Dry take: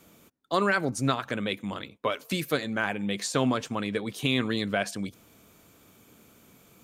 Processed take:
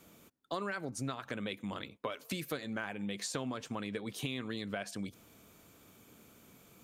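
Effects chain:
downward compressor 5 to 1, threshold −32 dBFS, peak gain reduction 11.5 dB
level −3 dB

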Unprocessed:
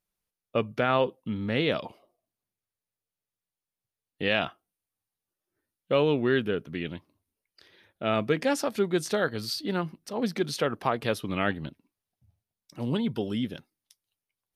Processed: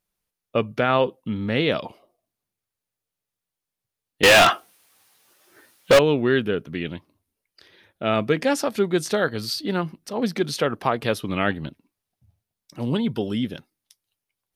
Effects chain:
0:04.23–0:05.99: mid-hump overdrive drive 34 dB, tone 7,800 Hz, clips at −10.5 dBFS
level +4.5 dB

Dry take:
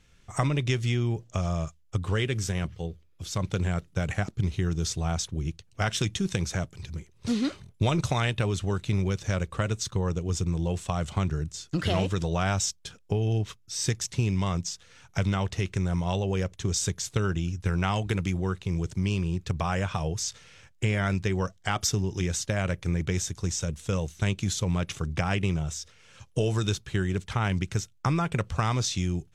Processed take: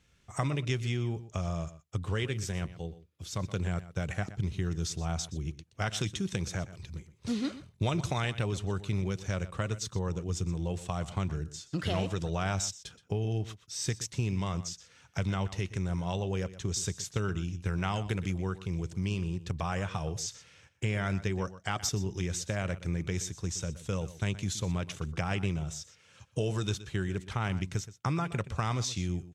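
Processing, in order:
high-pass filter 43 Hz
slap from a distant wall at 21 metres, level −15 dB
level −5 dB

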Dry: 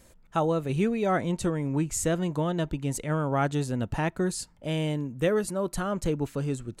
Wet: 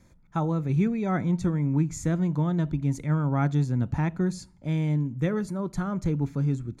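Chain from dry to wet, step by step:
bass and treble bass +9 dB, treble −9 dB
convolution reverb RT60 0.50 s, pre-delay 3 ms, DRR 18.5 dB
level −6 dB

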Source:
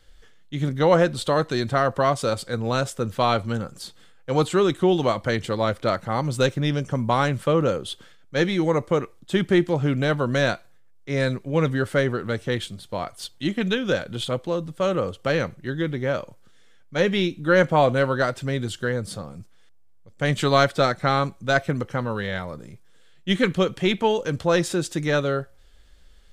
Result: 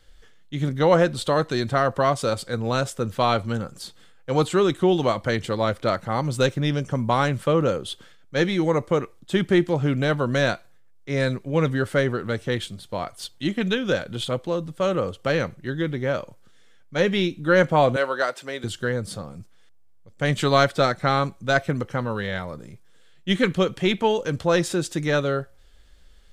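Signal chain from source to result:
0:17.96–0:18.64: high-pass filter 460 Hz 12 dB per octave

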